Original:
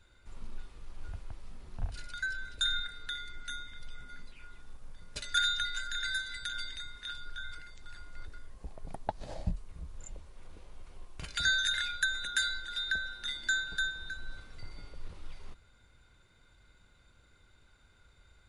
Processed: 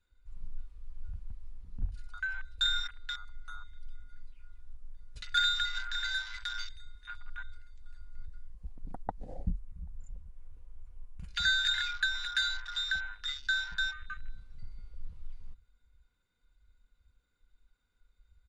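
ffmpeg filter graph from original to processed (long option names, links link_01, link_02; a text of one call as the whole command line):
ffmpeg -i in.wav -filter_complex "[0:a]asettb=1/sr,asplit=3[link_01][link_02][link_03];[link_01]atrim=end=9.024[link_04];[link_02]atrim=start=9.02:end=11.28,asetpts=PTS-STARTPTS,afade=type=in:duration=0.004:curve=qsin,afade=type=out:start_time=2.256:duration=0.004:curve=qsin,equalizer=frequency=4200:width_type=o:width=1.1:gain=-6.5,aecho=1:1:785:0.0668,atrim=end_sample=99666[link_05];[link_03]atrim=start=11.276[link_06];[link_04][link_05]acrossfade=duration=0.004:curve1=hsin:curve2=qsin[link_07];[link_07][link_06]acrossfade=duration=0.004:curve1=qsin:curve2=hsin,afwtdn=0.00891,equalizer=frequency=650:width=5.6:gain=-6,aecho=1:1:4.1:0.34" out.wav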